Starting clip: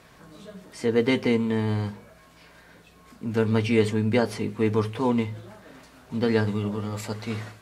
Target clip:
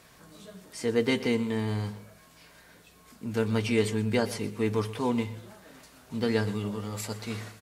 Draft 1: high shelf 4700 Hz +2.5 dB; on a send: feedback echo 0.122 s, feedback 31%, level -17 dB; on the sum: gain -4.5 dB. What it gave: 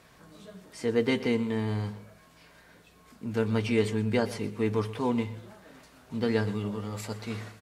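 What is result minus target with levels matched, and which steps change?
8000 Hz band -5.5 dB
change: high shelf 4700 Hz +10 dB

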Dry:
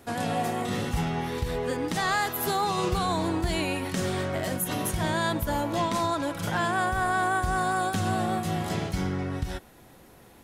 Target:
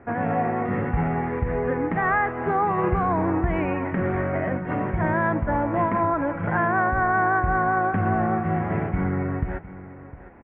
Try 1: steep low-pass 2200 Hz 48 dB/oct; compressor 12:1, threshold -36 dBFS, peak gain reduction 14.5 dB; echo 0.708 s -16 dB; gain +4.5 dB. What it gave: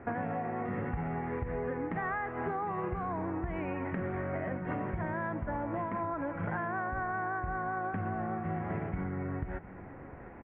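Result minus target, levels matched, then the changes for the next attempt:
compressor: peak gain reduction +14.5 dB
remove: compressor 12:1, threshold -36 dBFS, peak gain reduction 14.5 dB

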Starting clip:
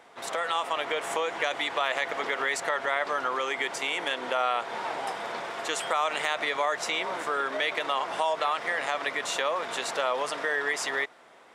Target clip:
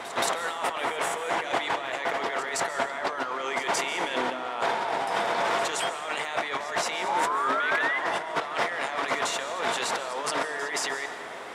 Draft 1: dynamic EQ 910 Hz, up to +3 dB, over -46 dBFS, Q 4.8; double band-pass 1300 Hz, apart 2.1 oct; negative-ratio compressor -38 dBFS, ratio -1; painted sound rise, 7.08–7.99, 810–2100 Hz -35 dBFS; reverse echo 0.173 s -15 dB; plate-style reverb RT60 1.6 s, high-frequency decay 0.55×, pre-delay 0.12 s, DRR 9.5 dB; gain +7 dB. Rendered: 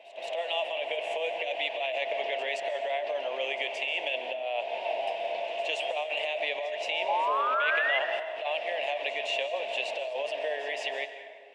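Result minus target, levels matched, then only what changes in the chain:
1000 Hz band -3.0 dB
remove: double band-pass 1300 Hz, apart 2.1 oct

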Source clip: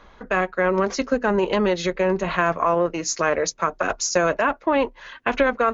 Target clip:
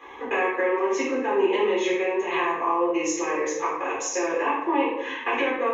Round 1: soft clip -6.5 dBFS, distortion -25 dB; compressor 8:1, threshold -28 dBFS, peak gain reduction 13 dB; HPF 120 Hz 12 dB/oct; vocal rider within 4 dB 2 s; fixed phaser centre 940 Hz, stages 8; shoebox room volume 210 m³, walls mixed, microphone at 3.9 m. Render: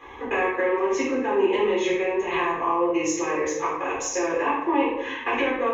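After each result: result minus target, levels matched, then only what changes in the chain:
soft clip: distortion +12 dB; 125 Hz band +7.5 dB
change: soft clip 0 dBFS, distortion -37 dB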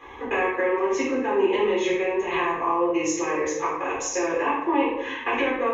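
125 Hz band +7.0 dB
change: HPF 260 Hz 12 dB/oct

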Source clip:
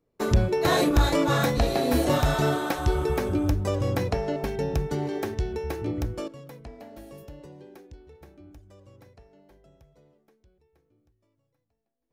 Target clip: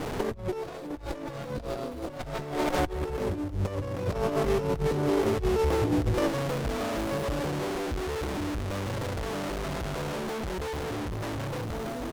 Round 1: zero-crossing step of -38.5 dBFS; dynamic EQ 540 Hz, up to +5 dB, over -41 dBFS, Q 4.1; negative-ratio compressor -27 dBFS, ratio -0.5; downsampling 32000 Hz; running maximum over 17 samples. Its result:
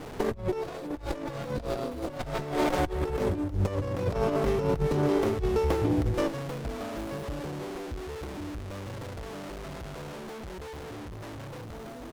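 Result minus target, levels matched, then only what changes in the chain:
zero-crossing step: distortion -7 dB
change: zero-crossing step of -31 dBFS

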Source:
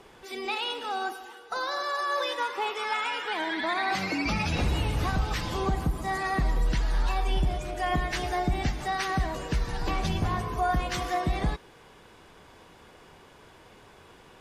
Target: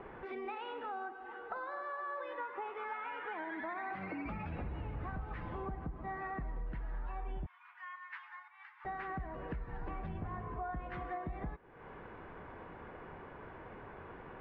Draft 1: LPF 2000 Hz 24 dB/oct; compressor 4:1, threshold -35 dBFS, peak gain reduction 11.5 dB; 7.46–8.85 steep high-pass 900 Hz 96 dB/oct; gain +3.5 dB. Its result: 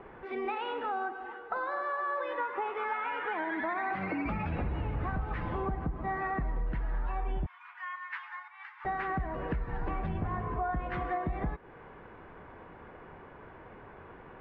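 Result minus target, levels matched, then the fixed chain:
compressor: peak gain reduction -8 dB
LPF 2000 Hz 24 dB/oct; compressor 4:1, threshold -45.5 dBFS, peak gain reduction 19.5 dB; 7.46–8.85 steep high-pass 900 Hz 96 dB/oct; gain +3.5 dB

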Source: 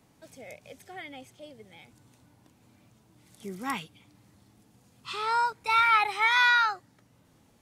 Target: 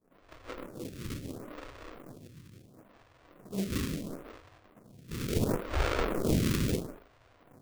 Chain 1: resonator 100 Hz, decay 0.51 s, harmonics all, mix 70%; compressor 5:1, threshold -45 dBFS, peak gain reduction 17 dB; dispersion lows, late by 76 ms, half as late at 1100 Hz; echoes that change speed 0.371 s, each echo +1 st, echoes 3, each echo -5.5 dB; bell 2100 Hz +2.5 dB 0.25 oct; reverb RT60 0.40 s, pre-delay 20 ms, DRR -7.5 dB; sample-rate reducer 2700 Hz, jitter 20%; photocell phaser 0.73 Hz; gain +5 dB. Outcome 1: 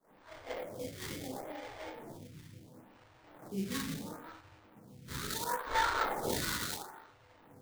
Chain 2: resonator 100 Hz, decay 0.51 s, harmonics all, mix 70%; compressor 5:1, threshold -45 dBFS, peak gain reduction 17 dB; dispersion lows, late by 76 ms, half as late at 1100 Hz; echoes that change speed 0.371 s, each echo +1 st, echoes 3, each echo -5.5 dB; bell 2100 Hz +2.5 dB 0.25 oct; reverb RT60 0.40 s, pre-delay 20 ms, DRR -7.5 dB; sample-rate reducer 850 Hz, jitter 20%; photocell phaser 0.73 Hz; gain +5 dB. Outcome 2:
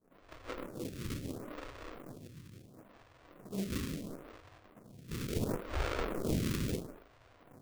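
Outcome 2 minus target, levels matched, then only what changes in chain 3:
compressor: peak gain reduction +5.5 dB
change: compressor 5:1, threshold -38 dBFS, peak gain reduction 11 dB

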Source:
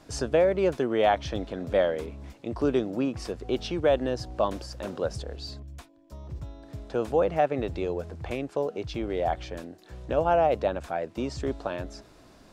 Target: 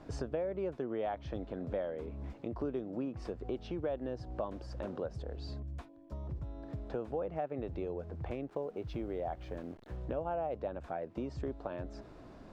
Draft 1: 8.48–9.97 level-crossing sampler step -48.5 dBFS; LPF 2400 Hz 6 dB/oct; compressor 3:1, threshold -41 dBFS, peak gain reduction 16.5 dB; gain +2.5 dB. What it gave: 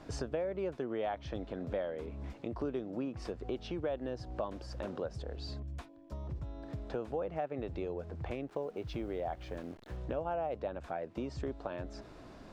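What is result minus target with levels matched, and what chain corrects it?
2000 Hz band +3.0 dB
8.48–9.97 level-crossing sampler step -48.5 dBFS; LPF 1100 Hz 6 dB/oct; compressor 3:1, threshold -41 dBFS, peak gain reduction 16 dB; gain +2.5 dB

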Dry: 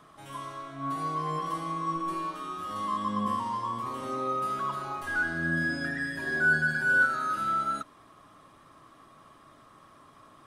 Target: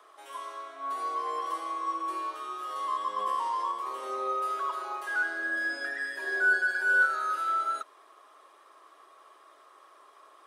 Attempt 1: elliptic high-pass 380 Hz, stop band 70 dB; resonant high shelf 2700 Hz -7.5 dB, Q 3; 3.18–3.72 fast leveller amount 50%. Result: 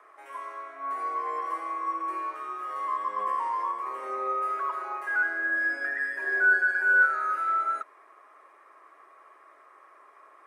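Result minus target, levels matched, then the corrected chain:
4000 Hz band -13.5 dB
elliptic high-pass 380 Hz, stop band 70 dB; 3.18–3.72 fast leveller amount 50%

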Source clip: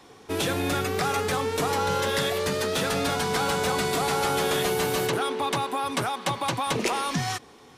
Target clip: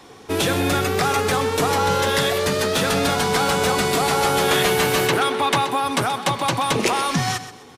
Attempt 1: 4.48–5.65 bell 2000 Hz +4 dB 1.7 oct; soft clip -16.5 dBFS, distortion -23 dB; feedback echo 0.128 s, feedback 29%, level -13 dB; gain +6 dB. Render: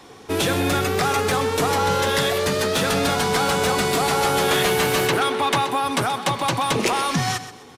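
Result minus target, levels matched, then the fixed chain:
soft clip: distortion +21 dB
4.48–5.65 bell 2000 Hz +4 dB 1.7 oct; soft clip -5 dBFS, distortion -45 dB; feedback echo 0.128 s, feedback 29%, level -13 dB; gain +6 dB

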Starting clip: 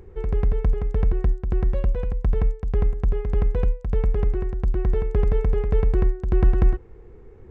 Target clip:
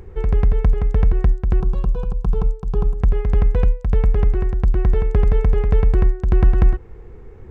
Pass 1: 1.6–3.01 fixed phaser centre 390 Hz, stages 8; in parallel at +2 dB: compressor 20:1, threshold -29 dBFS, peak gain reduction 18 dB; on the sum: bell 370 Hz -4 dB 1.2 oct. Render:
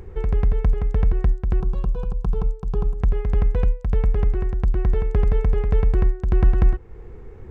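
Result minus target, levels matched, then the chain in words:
compressor: peak gain reduction +10 dB
1.6–3.01 fixed phaser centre 390 Hz, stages 8; in parallel at +2 dB: compressor 20:1, threshold -18.5 dBFS, peak gain reduction 8.5 dB; on the sum: bell 370 Hz -4 dB 1.2 oct

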